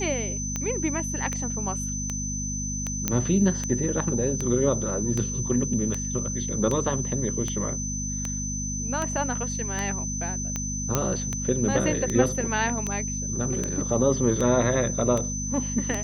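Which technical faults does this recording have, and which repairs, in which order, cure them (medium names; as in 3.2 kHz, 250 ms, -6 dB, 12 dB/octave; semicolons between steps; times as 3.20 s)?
hum 50 Hz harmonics 5 -32 dBFS
tick 78 rpm -14 dBFS
whine 6.1 kHz -31 dBFS
3.08 s: pop -7 dBFS
10.95 s: pop -7 dBFS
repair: de-click; de-hum 50 Hz, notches 5; band-stop 6.1 kHz, Q 30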